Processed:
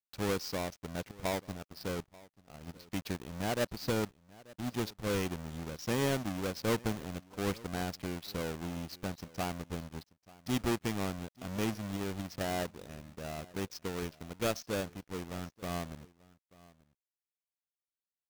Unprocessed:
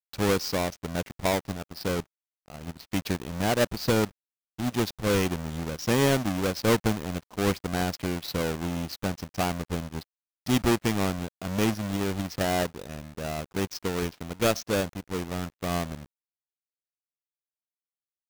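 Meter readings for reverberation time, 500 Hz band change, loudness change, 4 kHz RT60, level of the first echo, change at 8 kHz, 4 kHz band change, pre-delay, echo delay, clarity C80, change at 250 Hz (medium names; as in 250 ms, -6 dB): no reverb, -8.5 dB, -8.5 dB, no reverb, -22.0 dB, -8.5 dB, -8.5 dB, no reverb, 886 ms, no reverb, -8.5 dB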